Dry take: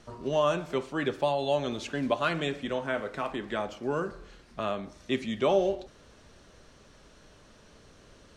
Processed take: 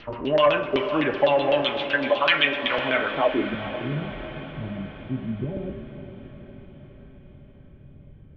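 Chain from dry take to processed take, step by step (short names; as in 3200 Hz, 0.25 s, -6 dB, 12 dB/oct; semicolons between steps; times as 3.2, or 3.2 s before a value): 1.62–2.78 tilt shelf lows -8.5 dB, about 1100 Hz; LFO low-pass saw down 7.9 Hz 350–5200 Hz; on a send at -3 dB: reverb RT60 0.60 s, pre-delay 3 ms; on the sum: soft clip -11 dBFS, distortion -20 dB; low-pass sweep 2800 Hz -> 150 Hz, 2.93–3.59; in parallel at +2 dB: compressor, threshold -34 dBFS, peak gain reduction 17 dB; on the sum: diffused feedback echo 0.473 s, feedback 60%, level -10.5 dB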